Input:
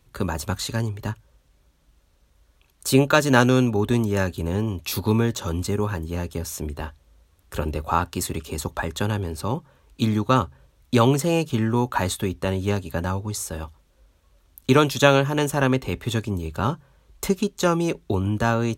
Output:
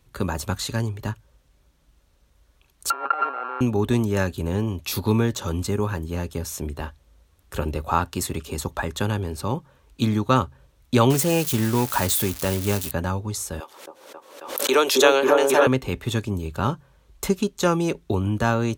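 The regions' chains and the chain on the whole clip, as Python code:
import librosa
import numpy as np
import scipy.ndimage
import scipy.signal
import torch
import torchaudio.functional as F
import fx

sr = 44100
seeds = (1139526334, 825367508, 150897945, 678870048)

y = fx.chain(x, sr, fx.sample_sort(block=32),
    fx.over_compress(threshold_db=-27.0, ratio=-1.0),
    fx.cabinet(low_hz=450.0, low_slope=24, high_hz=2000.0, hz=(790.0, 1300.0, 1900.0), db=(5, 7, -5)), at=(2.9, 3.61))
y = fx.chain(y, sr, fx.crossing_spikes(level_db=-18.0),
    fx.quant_float(bits=2), at=(11.1, 12.91))
y = fx.chain(y, sr, fx.cheby1_highpass(hz=380.0, order=3),
    fx.echo_opening(ms=270, hz=750, octaves=1, feedback_pct=70, wet_db=0),
    fx.pre_swell(db_per_s=70.0), at=(13.6, 15.67))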